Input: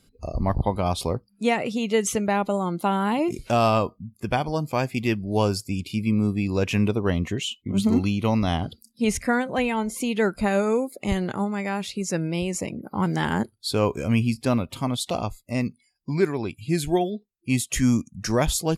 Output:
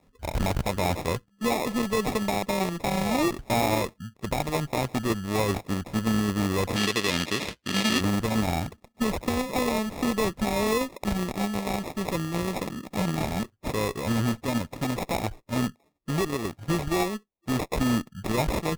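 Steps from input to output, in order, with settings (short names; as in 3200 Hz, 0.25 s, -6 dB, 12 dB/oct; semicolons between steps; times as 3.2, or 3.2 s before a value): sample-and-hold 29×; limiter -16.5 dBFS, peak gain reduction 7.5 dB; added harmonics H 6 -12 dB, 8 -16 dB, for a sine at -16.5 dBFS; 6.76–8.01 weighting filter D; gain -1 dB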